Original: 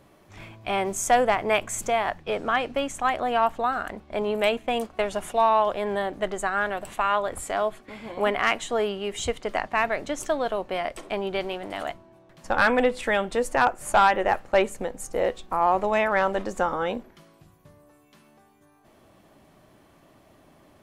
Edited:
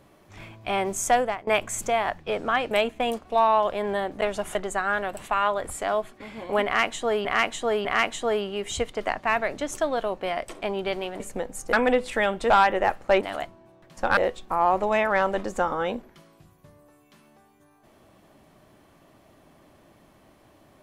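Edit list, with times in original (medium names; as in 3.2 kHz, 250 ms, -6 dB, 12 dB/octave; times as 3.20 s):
1.09–1.47 s: fade out linear, to -20 dB
2.71–4.39 s: delete
4.98–5.32 s: move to 6.23 s
8.33–8.93 s: loop, 3 plays
11.68–12.64 s: swap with 14.65–15.18 s
13.41–13.94 s: delete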